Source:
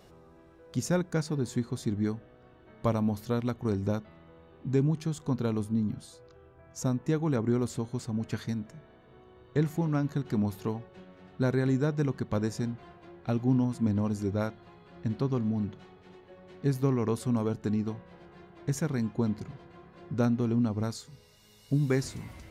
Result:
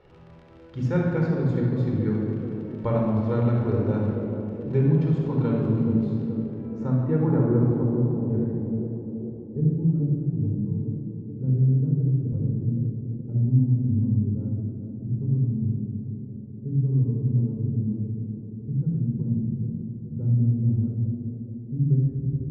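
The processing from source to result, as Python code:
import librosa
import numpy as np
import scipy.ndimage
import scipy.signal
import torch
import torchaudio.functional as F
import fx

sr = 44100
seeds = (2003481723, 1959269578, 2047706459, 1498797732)

p1 = fx.high_shelf(x, sr, hz=5000.0, db=-10.5)
p2 = fx.dmg_crackle(p1, sr, seeds[0], per_s=33.0, level_db=-37.0)
p3 = fx.filter_sweep_lowpass(p2, sr, from_hz=2800.0, to_hz=180.0, start_s=6.18, end_s=9.95, q=0.87)
p4 = p3 + fx.echo_banded(p3, sr, ms=427, feedback_pct=68, hz=380.0, wet_db=-7.5, dry=0)
p5 = fx.room_shoebox(p4, sr, seeds[1], volume_m3=3800.0, walls='mixed', distance_m=4.4)
y = p5 * librosa.db_to_amplitude(-2.5)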